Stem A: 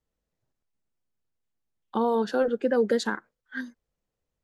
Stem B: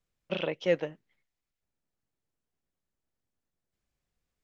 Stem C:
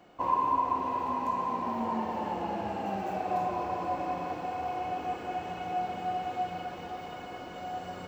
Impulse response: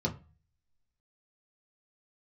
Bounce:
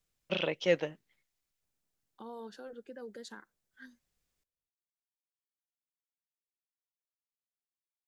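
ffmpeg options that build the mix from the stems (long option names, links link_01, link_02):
-filter_complex "[0:a]adelay=250,volume=-19.5dB[link_01];[1:a]volume=-1.5dB[link_02];[link_01]alimiter=level_in=13.5dB:limit=-24dB:level=0:latency=1:release=151,volume=-13.5dB,volume=0dB[link_03];[link_02][link_03]amix=inputs=2:normalize=0,highshelf=frequency=3100:gain=8.5"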